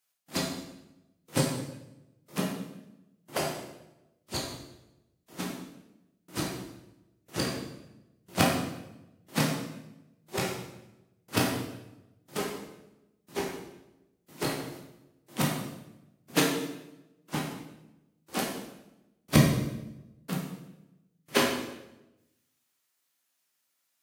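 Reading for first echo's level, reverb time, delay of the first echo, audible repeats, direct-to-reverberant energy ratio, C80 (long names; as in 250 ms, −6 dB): no echo audible, 0.95 s, no echo audible, no echo audible, −2.5 dB, 6.0 dB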